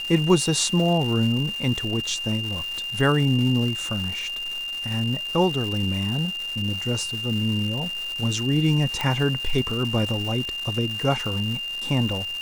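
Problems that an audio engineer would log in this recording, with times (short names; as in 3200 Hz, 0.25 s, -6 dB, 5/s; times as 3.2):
crackle 470/s -30 dBFS
tone 2800 Hz -28 dBFS
9.01 pop -11 dBFS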